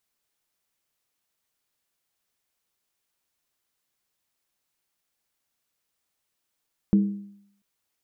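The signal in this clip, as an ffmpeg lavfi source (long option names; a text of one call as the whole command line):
ffmpeg -f lavfi -i "aevalsrc='0.224*pow(10,-3*t/0.7)*sin(2*PI*201*t)+0.0631*pow(10,-3*t/0.554)*sin(2*PI*320.4*t)+0.0178*pow(10,-3*t/0.479)*sin(2*PI*429.3*t)+0.00501*pow(10,-3*t/0.462)*sin(2*PI*461.5*t)+0.00141*pow(10,-3*t/0.43)*sin(2*PI*533.3*t)':duration=0.69:sample_rate=44100" out.wav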